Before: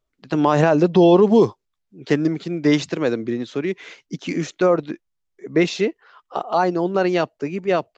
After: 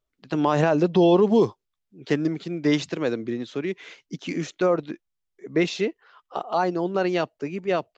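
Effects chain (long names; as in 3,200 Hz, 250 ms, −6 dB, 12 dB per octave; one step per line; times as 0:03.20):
parametric band 3,200 Hz +2 dB
level −4.5 dB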